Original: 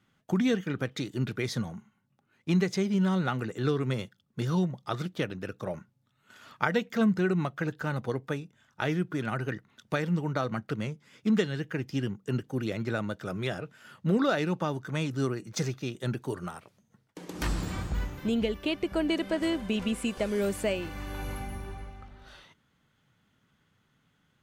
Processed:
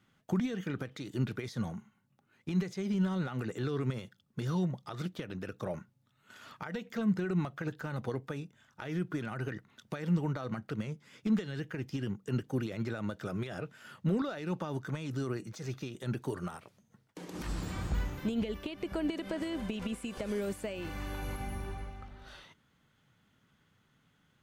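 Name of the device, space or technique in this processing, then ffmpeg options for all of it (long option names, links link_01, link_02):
de-esser from a sidechain: -filter_complex "[0:a]asplit=2[link_01][link_02];[link_02]highpass=frequency=5800:poles=1,apad=whole_len=1077337[link_03];[link_01][link_03]sidechaincompress=threshold=-48dB:ratio=5:attack=1:release=80"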